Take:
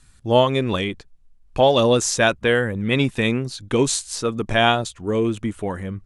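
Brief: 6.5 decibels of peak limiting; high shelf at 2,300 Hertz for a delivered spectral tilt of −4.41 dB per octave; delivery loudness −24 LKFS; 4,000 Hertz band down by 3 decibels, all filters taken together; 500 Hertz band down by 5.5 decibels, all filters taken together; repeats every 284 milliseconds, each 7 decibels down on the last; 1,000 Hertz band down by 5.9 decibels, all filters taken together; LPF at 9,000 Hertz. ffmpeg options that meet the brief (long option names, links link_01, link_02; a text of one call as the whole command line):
ffmpeg -i in.wav -af "lowpass=9000,equalizer=frequency=500:width_type=o:gain=-5,equalizer=frequency=1000:width_type=o:gain=-6.5,highshelf=frequency=2300:gain=3.5,equalizer=frequency=4000:width_type=o:gain=-6.5,alimiter=limit=-13dB:level=0:latency=1,aecho=1:1:284|568|852|1136|1420:0.447|0.201|0.0905|0.0407|0.0183,volume=0.5dB" out.wav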